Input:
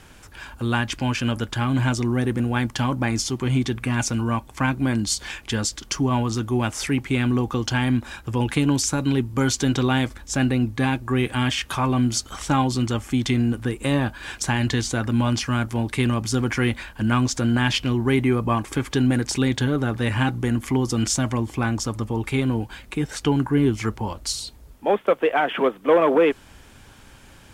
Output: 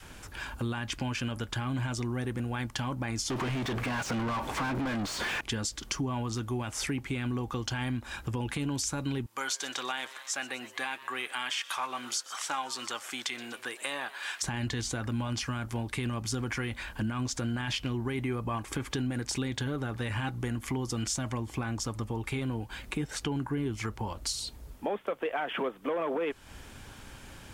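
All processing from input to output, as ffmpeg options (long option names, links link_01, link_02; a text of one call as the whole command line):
ffmpeg -i in.wav -filter_complex "[0:a]asettb=1/sr,asplit=3[link_01][link_02][link_03];[link_01]atrim=end=3.304[link_04];[link_02]atrim=start=3.3:end=5.41,asetpts=PTS-STARTPTS,afade=type=in:duration=0.004:curve=qsin,afade=type=out:start_time=2.106:duration=0.004:curve=qsin,acompressor=threshold=-28dB:ratio=2.5:attack=3.2:release=140:knee=1:detection=peak,asplit=2[link_05][link_06];[link_06]highpass=frequency=720:poles=1,volume=37dB,asoftclip=type=tanh:threshold=-15.5dB[link_07];[link_05][link_07]amix=inputs=2:normalize=0,lowpass=frequency=1400:poles=1,volume=-6dB[link_08];[link_03]atrim=start=5.406[link_09];[link_04][link_08]acrossfade=duration=0.004:curve1=hsin:curve2=qsin[link_10];[link_10][link_09]acrossfade=duration=0.004:curve1=qsin:curve2=hsin,asettb=1/sr,asplit=3[link_11][link_12][link_13];[link_11]atrim=end=9.264[link_14];[link_12]atrim=start=9.26:end=14.43,asetpts=PTS-STARTPTS,afade=type=in:duration=0.004:curve=qsin,afade=type=out:start_time=5.166:duration=0.004:curve=qsin,highpass=870,asplit=6[link_15][link_16][link_17][link_18][link_19][link_20];[link_16]adelay=123,afreqshift=140,volume=-19dB[link_21];[link_17]adelay=246,afreqshift=280,volume=-23.3dB[link_22];[link_18]adelay=369,afreqshift=420,volume=-27.6dB[link_23];[link_19]adelay=492,afreqshift=560,volume=-31.9dB[link_24];[link_20]adelay=615,afreqshift=700,volume=-36.2dB[link_25];[link_15][link_21][link_22][link_23][link_24][link_25]amix=inputs=6:normalize=0,atrim=end_sample=227997[link_26];[link_13]atrim=start=14.426[link_27];[link_14][link_26]acrossfade=duration=0.004:curve1=hsin:curve2=qsin[link_28];[link_28][link_27]acrossfade=duration=0.004:curve1=qsin:curve2=hsin,adynamicequalizer=threshold=0.0282:dfrequency=250:dqfactor=0.72:tfrequency=250:tqfactor=0.72:attack=5:release=100:ratio=0.375:range=2.5:mode=cutabove:tftype=bell,alimiter=limit=-14dB:level=0:latency=1:release=23,acompressor=threshold=-33dB:ratio=2.5" out.wav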